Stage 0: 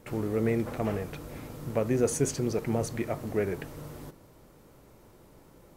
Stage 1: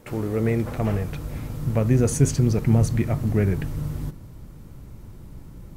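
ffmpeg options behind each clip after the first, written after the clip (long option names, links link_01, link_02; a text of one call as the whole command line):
ffmpeg -i in.wav -af "asubboost=boost=7:cutoff=190,volume=4dB" out.wav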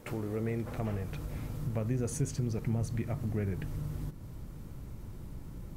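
ffmpeg -i in.wav -af "acompressor=threshold=-36dB:ratio=2,volume=-2dB" out.wav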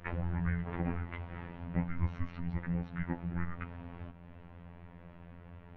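ffmpeg -i in.wav -af "highpass=frequency=260:width_type=q:width=0.5412,highpass=frequency=260:width_type=q:width=1.307,lowpass=frequency=3100:width_type=q:width=0.5176,lowpass=frequency=3100:width_type=q:width=0.7071,lowpass=frequency=3100:width_type=q:width=1.932,afreqshift=-390,afftfilt=real='hypot(re,im)*cos(PI*b)':imag='0':win_size=2048:overlap=0.75,volume=9dB" out.wav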